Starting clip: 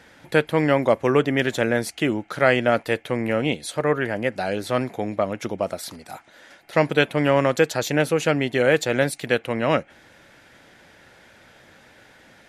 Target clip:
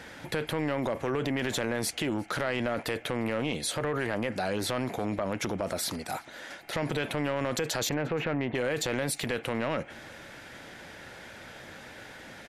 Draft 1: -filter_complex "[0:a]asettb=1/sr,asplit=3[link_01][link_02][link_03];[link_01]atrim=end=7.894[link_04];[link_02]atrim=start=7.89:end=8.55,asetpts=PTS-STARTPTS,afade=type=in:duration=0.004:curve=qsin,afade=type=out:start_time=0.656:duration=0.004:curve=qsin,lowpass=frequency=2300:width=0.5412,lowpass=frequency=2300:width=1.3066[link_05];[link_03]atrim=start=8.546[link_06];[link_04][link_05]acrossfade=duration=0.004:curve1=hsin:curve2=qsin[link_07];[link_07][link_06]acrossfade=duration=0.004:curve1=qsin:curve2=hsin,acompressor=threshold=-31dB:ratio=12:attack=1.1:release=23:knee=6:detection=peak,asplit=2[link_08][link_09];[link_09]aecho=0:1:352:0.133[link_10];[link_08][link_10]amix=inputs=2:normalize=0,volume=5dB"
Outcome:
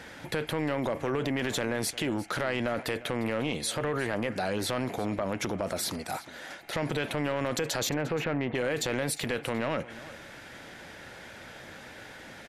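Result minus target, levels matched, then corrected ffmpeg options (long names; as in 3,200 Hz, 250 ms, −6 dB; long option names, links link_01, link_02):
echo-to-direct +9 dB
-filter_complex "[0:a]asettb=1/sr,asplit=3[link_01][link_02][link_03];[link_01]atrim=end=7.894[link_04];[link_02]atrim=start=7.89:end=8.55,asetpts=PTS-STARTPTS,afade=type=in:duration=0.004:curve=qsin,afade=type=out:start_time=0.656:duration=0.004:curve=qsin,lowpass=frequency=2300:width=0.5412,lowpass=frequency=2300:width=1.3066[link_05];[link_03]atrim=start=8.546[link_06];[link_04][link_05]acrossfade=duration=0.004:curve1=hsin:curve2=qsin[link_07];[link_07][link_06]acrossfade=duration=0.004:curve1=qsin:curve2=hsin,acompressor=threshold=-31dB:ratio=12:attack=1.1:release=23:knee=6:detection=peak,asplit=2[link_08][link_09];[link_09]aecho=0:1:352:0.0473[link_10];[link_08][link_10]amix=inputs=2:normalize=0,volume=5dB"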